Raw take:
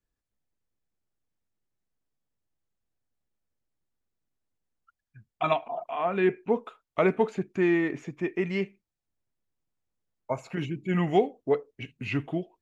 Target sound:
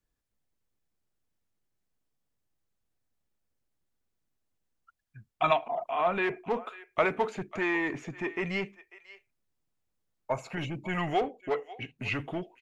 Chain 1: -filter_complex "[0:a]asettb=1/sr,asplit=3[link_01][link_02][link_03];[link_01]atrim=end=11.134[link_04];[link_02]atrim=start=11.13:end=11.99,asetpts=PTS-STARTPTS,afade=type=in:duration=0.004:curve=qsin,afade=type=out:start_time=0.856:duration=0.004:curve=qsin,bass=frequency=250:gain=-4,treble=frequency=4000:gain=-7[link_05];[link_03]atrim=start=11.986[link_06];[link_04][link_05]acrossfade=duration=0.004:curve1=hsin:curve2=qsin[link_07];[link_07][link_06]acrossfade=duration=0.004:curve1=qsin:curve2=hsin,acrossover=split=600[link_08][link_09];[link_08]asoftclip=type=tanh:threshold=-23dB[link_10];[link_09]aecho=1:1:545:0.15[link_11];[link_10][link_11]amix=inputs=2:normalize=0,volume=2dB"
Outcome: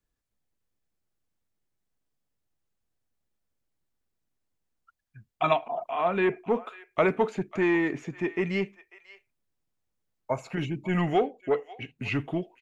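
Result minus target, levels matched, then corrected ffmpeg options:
soft clipping: distortion −9 dB
-filter_complex "[0:a]asettb=1/sr,asplit=3[link_01][link_02][link_03];[link_01]atrim=end=11.134[link_04];[link_02]atrim=start=11.13:end=11.99,asetpts=PTS-STARTPTS,afade=type=in:duration=0.004:curve=qsin,afade=type=out:start_time=0.856:duration=0.004:curve=qsin,bass=frequency=250:gain=-4,treble=frequency=4000:gain=-7[link_05];[link_03]atrim=start=11.986[link_06];[link_04][link_05]acrossfade=duration=0.004:curve1=hsin:curve2=qsin[link_07];[link_07][link_06]acrossfade=duration=0.004:curve1=qsin:curve2=hsin,acrossover=split=600[link_08][link_09];[link_08]asoftclip=type=tanh:threshold=-34.5dB[link_10];[link_09]aecho=1:1:545:0.15[link_11];[link_10][link_11]amix=inputs=2:normalize=0,volume=2dB"

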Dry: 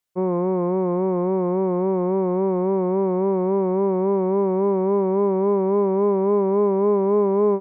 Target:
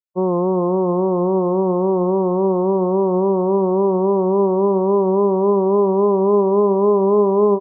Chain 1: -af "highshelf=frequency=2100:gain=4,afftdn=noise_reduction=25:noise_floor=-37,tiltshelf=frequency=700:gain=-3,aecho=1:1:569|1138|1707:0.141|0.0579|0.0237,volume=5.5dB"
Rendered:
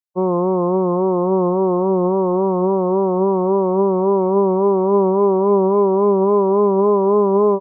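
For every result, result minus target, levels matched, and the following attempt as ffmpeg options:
echo 227 ms late; 2,000 Hz band +8.5 dB
-af "highshelf=frequency=2100:gain=4,afftdn=noise_reduction=25:noise_floor=-37,tiltshelf=frequency=700:gain=-3,aecho=1:1:342|684|1026:0.141|0.0579|0.0237,volume=5.5dB"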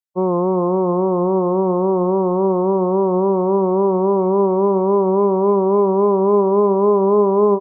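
2,000 Hz band +8.5 dB
-af "highshelf=frequency=2100:gain=-6.5,afftdn=noise_reduction=25:noise_floor=-37,tiltshelf=frequency=700:gain=-3,aecho=1:1:342|684|1026:0.141|0.0579|0.0237,volume=5.5dB"

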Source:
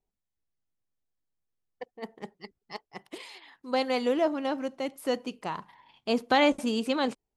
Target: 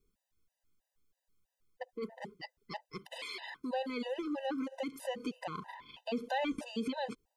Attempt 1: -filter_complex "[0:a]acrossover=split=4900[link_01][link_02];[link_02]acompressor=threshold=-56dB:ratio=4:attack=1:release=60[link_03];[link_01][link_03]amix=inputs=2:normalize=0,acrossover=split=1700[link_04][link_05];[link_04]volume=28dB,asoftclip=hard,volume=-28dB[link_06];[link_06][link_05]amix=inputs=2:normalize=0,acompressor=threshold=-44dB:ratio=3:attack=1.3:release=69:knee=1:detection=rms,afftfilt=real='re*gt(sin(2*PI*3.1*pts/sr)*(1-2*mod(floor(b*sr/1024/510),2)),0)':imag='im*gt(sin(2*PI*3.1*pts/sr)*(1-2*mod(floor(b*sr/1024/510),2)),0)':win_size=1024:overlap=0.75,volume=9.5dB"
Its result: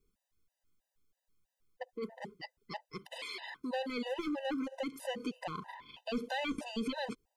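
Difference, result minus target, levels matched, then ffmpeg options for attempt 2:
gain into a clipping stage and back: distortion +17 dB
-filter_complex "[0:a]acrossover=split=4900[link_01][link_02];[link_02]acompressor=threshold=-56dB:ratio=4:attack=1:release=60[link_03];[link_01][link_03]amix=inputs=2:normalize=0,acrossover=split=1700[link_04][link_05];[link_04]volume=17.5dB,asoftclip=hard,volume=-17.5dB[link_06];[link_06][link_05]amix=inputs=2:normalize=0,acompressor=threshold=-44dB:ratio=3:attack=1.3:release=69:knee=1:detection=rms,afftfilt=real='re*gt(sin(2*PI*3.1*pts/sr)*(1-2*mod(floor(b*sr/1024/510),2)),0)':imag='im*gt(sin(2*PI*3.1*pts/sr)*(1-2*mod(floor(b*sr/1024/510),2)),0)':win_size=1024:overlap=0.75,volume=9.5dB"

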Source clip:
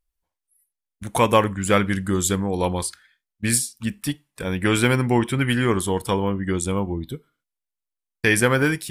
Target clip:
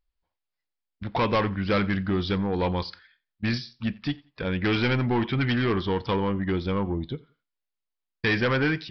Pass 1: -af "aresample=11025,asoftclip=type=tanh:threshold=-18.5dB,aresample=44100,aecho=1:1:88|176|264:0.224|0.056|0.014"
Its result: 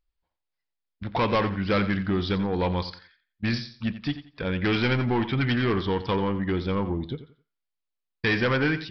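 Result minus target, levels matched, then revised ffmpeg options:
echo-to-direct +11 dB
-af "aresample=11025,asoftclip=type=tanh:threshold=-18.5dB,aresample=44100,aecho=1:1:88|176:0.0631|0.0158"

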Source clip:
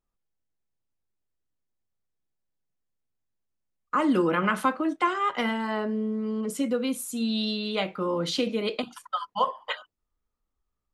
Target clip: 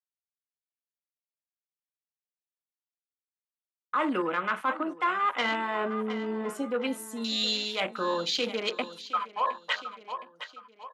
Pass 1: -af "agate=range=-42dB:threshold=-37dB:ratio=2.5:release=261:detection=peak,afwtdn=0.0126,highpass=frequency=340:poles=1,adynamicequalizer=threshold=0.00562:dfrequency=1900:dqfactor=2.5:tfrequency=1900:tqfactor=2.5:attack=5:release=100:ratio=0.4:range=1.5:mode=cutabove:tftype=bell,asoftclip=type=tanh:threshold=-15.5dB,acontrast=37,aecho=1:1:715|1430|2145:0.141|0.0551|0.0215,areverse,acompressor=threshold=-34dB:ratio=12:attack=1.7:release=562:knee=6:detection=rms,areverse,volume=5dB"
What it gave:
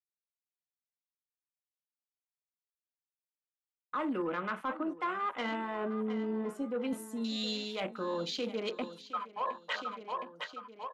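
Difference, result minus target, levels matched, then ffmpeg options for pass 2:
downward compressor: peak gain reduction +9.5 dB; 250 Hz band +4.5 dB
-af "agate=range=-42dB:threshold=-37dB:ratio=2.5:release=261:detection=peak,afwtdn=0.0126,highpass=frequency=1200:poles=1,adynamicequalizer=threshold=0.00562:dfrequency=1900:dqfactor=2.5:tfrequency=1900:tqfactor=2.5:attack=5:release=100:ratio=0.4:range=1.5:mode=cutabove:tftype=bell,asoftclip=type=tanh:threshold=-15.5dB,acontrast=37,aecho=1:1:715|1430|2145:0.141|0.0551|0.0215,areverse,acompressor=threshold=-25.5dB:ratio=12:attack=1.7:release=562:knee=6:detection=rms,areverse,volume=5dB"

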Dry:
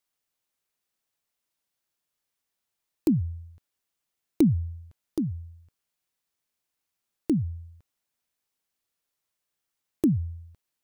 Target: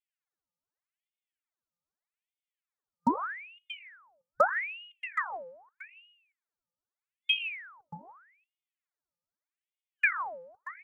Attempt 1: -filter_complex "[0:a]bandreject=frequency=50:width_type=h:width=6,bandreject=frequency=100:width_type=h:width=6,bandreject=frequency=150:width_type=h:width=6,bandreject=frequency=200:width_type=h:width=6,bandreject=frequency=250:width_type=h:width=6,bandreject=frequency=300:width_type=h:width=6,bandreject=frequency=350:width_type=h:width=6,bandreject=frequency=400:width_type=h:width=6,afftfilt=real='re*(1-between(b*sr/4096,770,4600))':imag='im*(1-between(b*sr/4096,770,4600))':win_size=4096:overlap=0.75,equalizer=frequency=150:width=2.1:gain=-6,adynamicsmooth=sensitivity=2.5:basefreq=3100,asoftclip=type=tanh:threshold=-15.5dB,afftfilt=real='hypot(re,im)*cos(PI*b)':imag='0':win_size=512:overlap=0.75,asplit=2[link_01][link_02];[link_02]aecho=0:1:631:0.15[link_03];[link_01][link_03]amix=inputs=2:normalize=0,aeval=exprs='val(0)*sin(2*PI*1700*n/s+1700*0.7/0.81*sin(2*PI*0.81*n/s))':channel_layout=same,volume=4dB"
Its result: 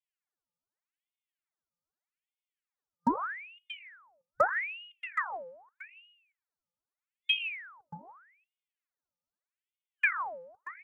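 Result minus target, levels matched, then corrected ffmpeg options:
soft clipping: distortion +17 dB
-filter_complex "[0:a]bandreject=frequency=50:width_type=h:width=6,bandreject=frequency=100:width_type=h:width=6,bandreject=frequency=150:width_type=h:width=6,bandreject=frequency=200:width_type=h:width=6,bandreject=frequency=250:width_type=h:width=6,bandreject=frequency=300:width_type=h:width=6,bandreject=frequency=350:width_type=h:width=6,bandreject=frequency=400:width_type=h:width=6,afftfilt=real='re*(1-between(b*sr/4096,770,4600))':imag='im*(1-between(b*sr/4096,770,4600))':win_size=4096:overlap=0.75,equalizer=frequency=150:width=2.1:gain=-6,adynamicsmooth=sensitivity=2.5:basefreq=3100,asoftclip=type=tanh:threshold=-6dB,afftfilt=real='hypot(re,im)*cos(PI*b)':imag='0':win_size=512:overlap=0.75,asplit=2[link_01][link_02];[link_02]aecho=0:1:631:0.15[link_03];[link_01][link_03]amix=inputs=2:normalize=0,aeval=exprs='val(0)*sin(2*PI*1700*n/s+1700*0.7/0.81*sin(2*PI*0.81*n/s))':channel_layout=same,volume=4dB"

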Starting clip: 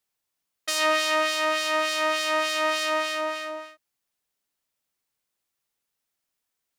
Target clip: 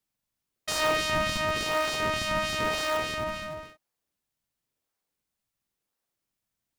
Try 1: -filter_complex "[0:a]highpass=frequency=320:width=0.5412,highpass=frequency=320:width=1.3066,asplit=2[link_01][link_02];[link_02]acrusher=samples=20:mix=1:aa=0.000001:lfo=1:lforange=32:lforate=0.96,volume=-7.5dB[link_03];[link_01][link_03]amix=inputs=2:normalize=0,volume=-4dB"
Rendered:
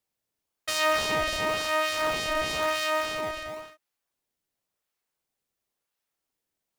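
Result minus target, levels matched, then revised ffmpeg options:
sample-and-hold swept by an LFO: distortion −13 dB
-filter_complex "[0:a]highpass=frequency=320:width=0.5412,highpass=frequency=320:width=1.3066,asplit=2[link_01][link_02];[link_02]acrusher=samples=61:mix=1:aa=0.000001:lfo=1:lforange=97.6:lforate=0.96,volume=-7.5dB[link_03];[link_01][link_03]amix=inputs=2:normalize=0,volume=-4dB"

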